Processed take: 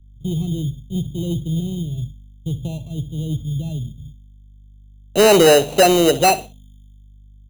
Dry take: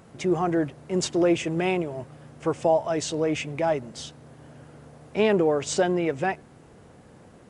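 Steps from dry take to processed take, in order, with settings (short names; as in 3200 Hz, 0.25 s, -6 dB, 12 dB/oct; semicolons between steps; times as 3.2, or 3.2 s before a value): gate -40 dBFS, range -49 dB; low-pass sweep 130 Hz -> 710 Hz, 4.44–5.23; in parallel at +1.5 dB: compressor, threshold -32 dBFS, peak gain reduction 18.5 dB; on the sum: hum 50 Hz, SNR 19 dB; sample-and-hold 13×; soft clip -17 dBFS, distortion -10 dB; on a send: feedback echo 63 ms, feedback 27%, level -15.5 dB; on the sum: three-band expander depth 70%; gain +4.5 dB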